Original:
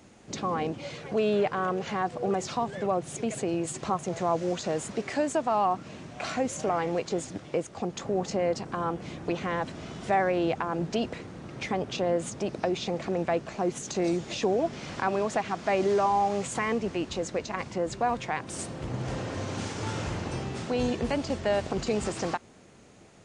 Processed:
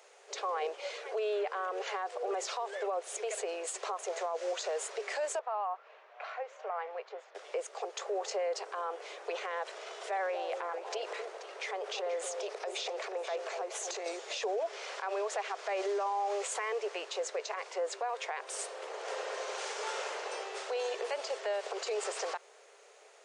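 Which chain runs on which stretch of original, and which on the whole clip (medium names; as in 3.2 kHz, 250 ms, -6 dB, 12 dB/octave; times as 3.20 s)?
5.39–7.35 s: high-pass 790 Hz + tape spacing loss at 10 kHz 41 dB
9.64–14.06 s: compression 2:1, threshold -33 dBFS + transient shaper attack -3 dB, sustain +6 dB + echo whose repeats swap between lows and highs 241 ms, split 890 Hz, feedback 50%, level -5.5 dB
whole clip: Chebyshev high-pass 410 Hz, order 6; peak limiter -26.5 dBFS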